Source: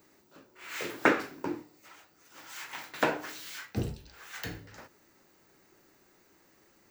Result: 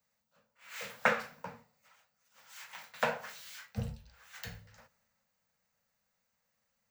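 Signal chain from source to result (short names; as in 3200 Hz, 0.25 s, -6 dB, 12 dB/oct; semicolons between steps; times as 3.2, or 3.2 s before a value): Chebyshev band-stop 230–480 Hz, order 3; three-band expander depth 40%; gain -6 dB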